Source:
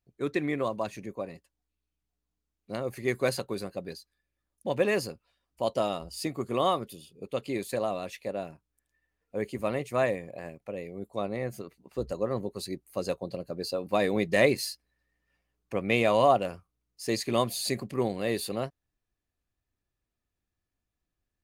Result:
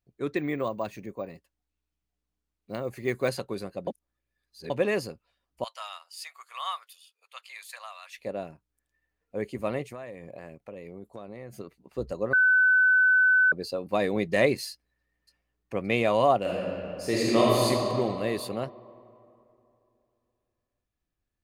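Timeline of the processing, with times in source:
0:00.37–0:03.28: bad sample-rate conversion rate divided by 2×, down none, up hold
0:03.87–0:04.70: reverse
0:05.64–0:08.18: inverse Chebyshev high-pass filter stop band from 320 Hz, stop band 60 dB
0:09.89–0:11.58: downward compressor 10 to 1, threshold −36 dBFS
0:12.33–0:13.52: beep over 1,510 Hz −16.5 dBFS
0:14.70–0:15.76: delay throw 570 ms, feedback 55%, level −18 dB
0:16.41–0:17.65: thrown reverb, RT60 2.9 s, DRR −6.5 dB
whole clip: high-shelf EQ 4,700 Hz −5 dB

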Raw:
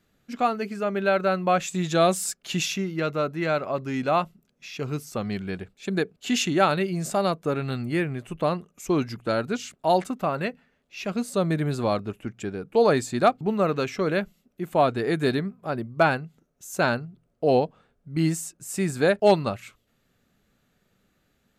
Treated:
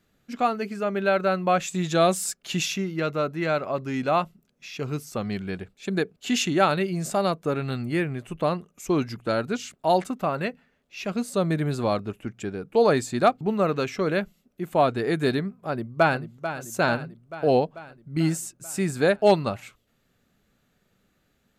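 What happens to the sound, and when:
0:15.59–0:16.21: delay throw 440 ms, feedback 65%, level −10.5 dB

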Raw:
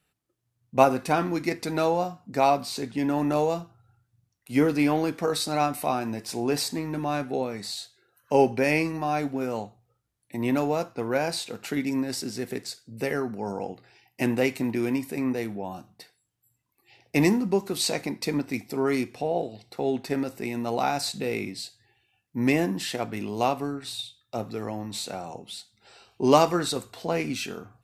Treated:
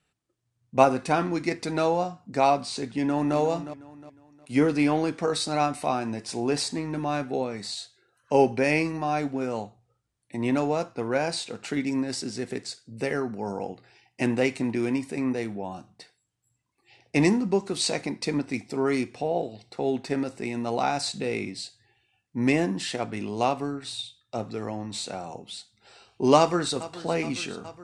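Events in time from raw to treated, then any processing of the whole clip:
0:02.84–0:03.37: delay throw 360 ms, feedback 35%, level −12.5 dB
0:26.38–0:26.84: delay throw 420 ms, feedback 75%, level −16 dB
whole clip: Butterworth low-pass 9,800 Hz 48 dB per octave

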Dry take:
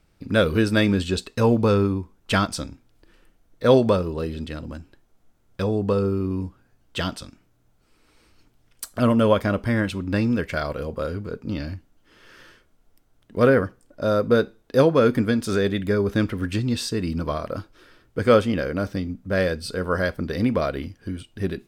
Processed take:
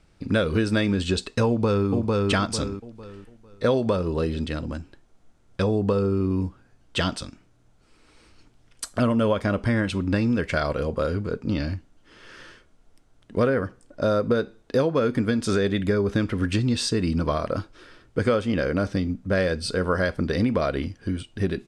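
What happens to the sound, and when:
0:01.47–0:01.89: delay throw 450 ms, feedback 30%, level −5.5 dB
whole clip: low-pass filter 9,700 Hz 24 dB per octave; downward compressor 6 to 1, threshold −22 dBFS; level +3.5 dB

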